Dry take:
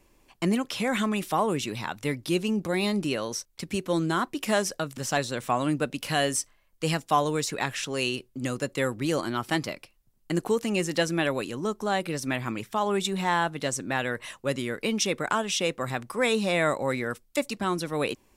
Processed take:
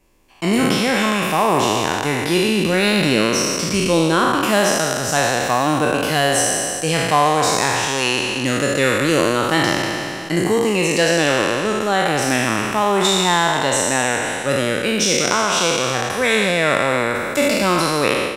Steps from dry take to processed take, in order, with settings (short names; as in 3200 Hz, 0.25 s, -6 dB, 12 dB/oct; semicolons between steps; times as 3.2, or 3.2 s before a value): spectral trails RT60 2.55 s; AGC; speakerphone echo 0.22 s, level -17 dB; gain -1 dB